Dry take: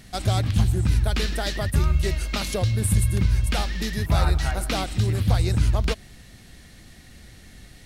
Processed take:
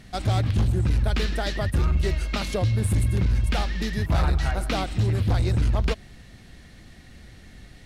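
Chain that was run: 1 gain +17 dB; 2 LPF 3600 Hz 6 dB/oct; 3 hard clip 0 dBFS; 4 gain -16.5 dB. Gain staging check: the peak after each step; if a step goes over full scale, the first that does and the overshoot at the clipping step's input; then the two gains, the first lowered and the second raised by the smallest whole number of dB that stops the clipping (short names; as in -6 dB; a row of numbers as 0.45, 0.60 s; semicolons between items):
+7.0, +7.0, 0.0, -16.5 dBFS; step 1, 7.0 dB; step 1 +10 dB, step 4 -9.5 dB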